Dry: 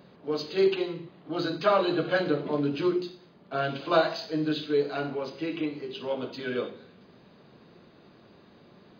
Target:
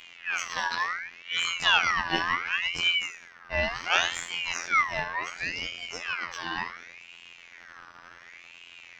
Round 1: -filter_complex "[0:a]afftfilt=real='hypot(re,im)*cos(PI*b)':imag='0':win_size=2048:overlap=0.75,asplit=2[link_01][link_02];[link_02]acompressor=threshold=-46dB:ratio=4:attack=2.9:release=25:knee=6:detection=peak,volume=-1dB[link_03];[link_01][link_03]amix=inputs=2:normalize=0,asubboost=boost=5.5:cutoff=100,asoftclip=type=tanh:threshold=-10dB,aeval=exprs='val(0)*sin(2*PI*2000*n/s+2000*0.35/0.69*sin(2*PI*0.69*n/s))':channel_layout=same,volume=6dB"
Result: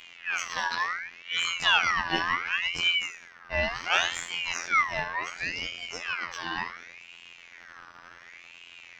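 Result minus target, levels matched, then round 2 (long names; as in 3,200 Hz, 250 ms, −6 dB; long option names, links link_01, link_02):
soft clipping: distortion +16 dB
-filter_complex "[0:a]afftfilt=real='hypot(re,im)*cos(PI*b)':imag='0':win_size=2048:overlap=0.75,asplit=2[link_01][link_02];[link_02]acompressor=threshold=-46dB:ratio=4:attack=2.9:release=25:knee=6:detection=peak,volume=-1dB[link_03];[link_01][link_03]amix=inputs=2:normalize=0,asubboost=boost=5.5:cutoff=100,asoftclip=type=tanh:threshold=-1dB,aeval=exprs='val(0)*sin(2*PI*2000*n/s+2000*0.35/0.69*sin(2*PI*0.69*n/s))':channel_layout=same,volume=6dB"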